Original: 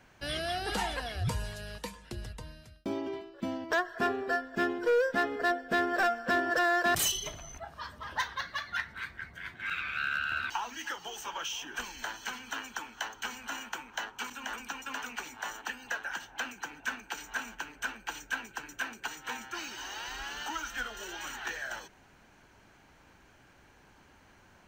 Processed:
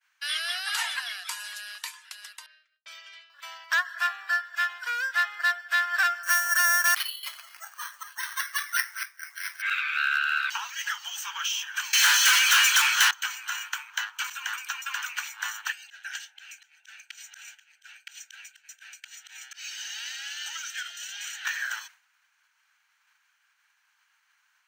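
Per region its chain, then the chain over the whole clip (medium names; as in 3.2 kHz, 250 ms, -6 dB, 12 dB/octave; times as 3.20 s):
2.46–3.30 s: static phaser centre 370 Hz, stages 4 + level-controlled noise filter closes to 1.5 kHz, open at -31.5 dBFS
6.23–9.62 s: square tremolo 1 Hz, depth 65%, duty 80% + careless resampling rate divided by 6×, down filtered, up hold
11.93–13.11 s: tilt EQ +2 dB/octave + overdrive pedal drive 29 dB, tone 6.9 kHz, clips at -18.5 dBFS
15.72–21.45 s: low-pass 12 kHz + slow attack 154 ms + static phaser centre 450 Hz, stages 4
whole clip: expander -50 dBFS; inverse Chebyshev high-pass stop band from 360 Hz, stop band 60 dB; treble shelf 11 kHz +4.5 dB; trim +7.5 dB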